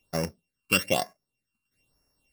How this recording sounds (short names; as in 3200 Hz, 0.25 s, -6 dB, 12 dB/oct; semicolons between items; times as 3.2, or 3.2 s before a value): a buzz of ramps at a fixed pitch in blocks of 16 samples; phasing stages 12, 1.1 Hz, lowest notch 600–3300 Hz